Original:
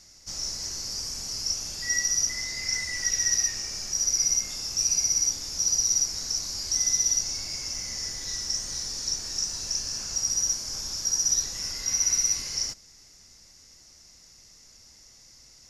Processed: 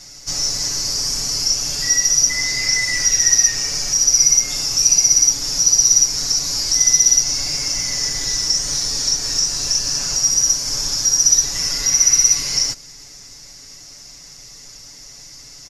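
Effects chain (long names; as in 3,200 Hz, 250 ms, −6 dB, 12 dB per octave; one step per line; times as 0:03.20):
in parallel at −0.5 dB: downward compressor, threshold −32 dBFS, peak gain reduction 12 dB
on the sum: comb filter 7 ms, depth 92%
level +5 dB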